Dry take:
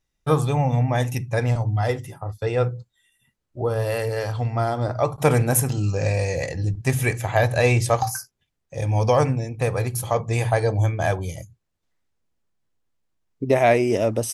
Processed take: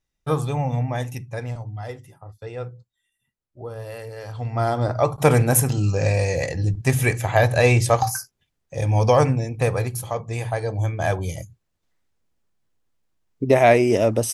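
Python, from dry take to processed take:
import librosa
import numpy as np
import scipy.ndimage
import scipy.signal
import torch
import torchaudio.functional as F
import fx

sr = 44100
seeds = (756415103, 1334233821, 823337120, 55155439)

y = fx.gain(x, sr, db=fx.line((0.78, -3.0), (1.73, -10.5), (4.18, -10.5), (4.67, 2.0), (9.69, 2.0), (10.15, -5.0), (10.66, -5.0), (11.31, 2.5)))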